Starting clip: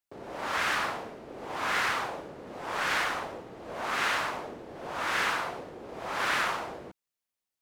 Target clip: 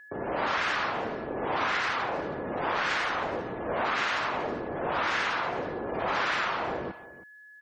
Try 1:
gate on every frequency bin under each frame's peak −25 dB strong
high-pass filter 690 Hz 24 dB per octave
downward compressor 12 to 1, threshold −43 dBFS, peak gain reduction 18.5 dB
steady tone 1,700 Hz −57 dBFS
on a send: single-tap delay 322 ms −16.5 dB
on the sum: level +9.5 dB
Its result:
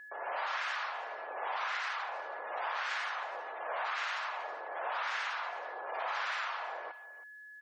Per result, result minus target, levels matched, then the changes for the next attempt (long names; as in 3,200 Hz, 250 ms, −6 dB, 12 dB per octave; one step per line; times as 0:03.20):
downward compressor: peak gain reduction +7.5 dB; 500 Hz band −4.0 dB
change: downward compressor 12 to 1, threshold −34.5 dBFS, peak gain reduction 10.5 dB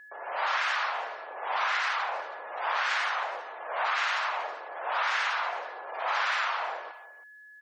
500 Hz band −6.5 dB
remove: high-pass filter 690 Hz 24 dB per octave